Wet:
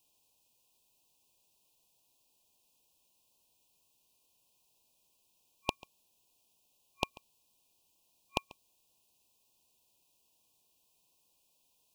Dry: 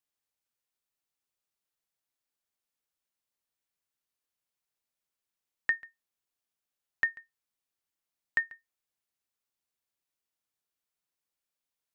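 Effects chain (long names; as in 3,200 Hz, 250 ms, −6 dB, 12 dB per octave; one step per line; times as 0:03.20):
brick-wall band-stop 1,100–2,400 Hz
level +16 dB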